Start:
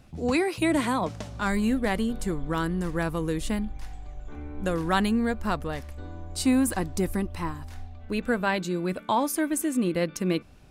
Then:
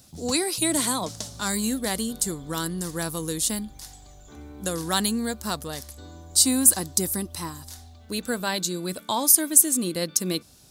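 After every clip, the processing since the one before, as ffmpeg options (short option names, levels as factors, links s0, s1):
-af "highpass=70,aexciter=amount=6.7:drive=5:freq=3600,volume=0.75"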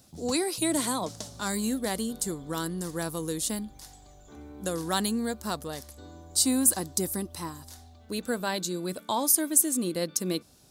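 -af "equalizer=f=470:w=0.39:g=5,volume=0.501"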